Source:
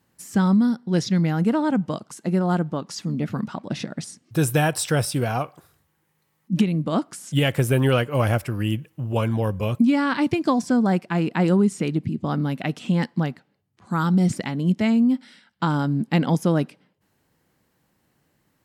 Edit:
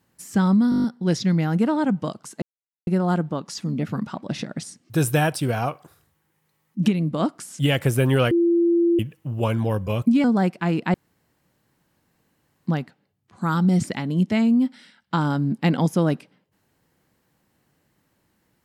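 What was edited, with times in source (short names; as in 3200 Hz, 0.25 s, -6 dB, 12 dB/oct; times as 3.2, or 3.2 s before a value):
0.7 stutter 0.02 s, 8 plays
2.28 insert silence 0.45 s
4.77–5.09 cut
8.04–8.72 bleep 341 Hz -15 dBFS
9.97–10.73 cut
11.43–13.16 room tone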